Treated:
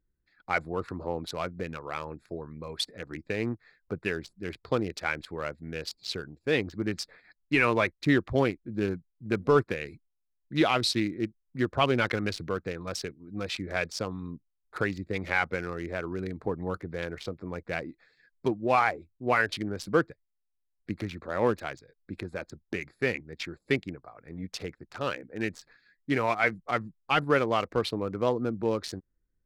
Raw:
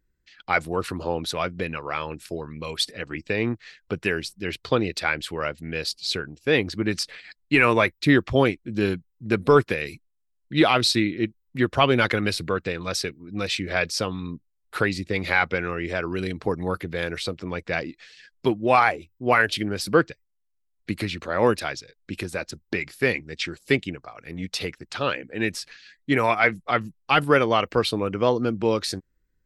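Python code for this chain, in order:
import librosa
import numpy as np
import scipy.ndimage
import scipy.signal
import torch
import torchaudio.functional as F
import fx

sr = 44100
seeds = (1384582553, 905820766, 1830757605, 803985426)

y = fx.wiener(x, sr, points=15)
y = F.gain(torch.from_numpy(y), -5.5).numpy()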